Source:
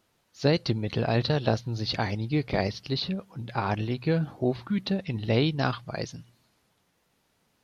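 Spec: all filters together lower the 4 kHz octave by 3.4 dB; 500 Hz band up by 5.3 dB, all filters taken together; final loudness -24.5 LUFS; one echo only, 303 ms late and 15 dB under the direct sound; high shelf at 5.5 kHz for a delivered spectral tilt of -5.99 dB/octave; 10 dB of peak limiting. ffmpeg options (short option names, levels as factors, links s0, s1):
-af "equalizer=f=500:t=o:g=6.5,equalizer=f=4000:t=o:g=-5.5,highshelf=f=5500:g=4,alimiter=limit=0.15:level=0:latency=1,aecho=1:1:303:0.178,volume=1.68"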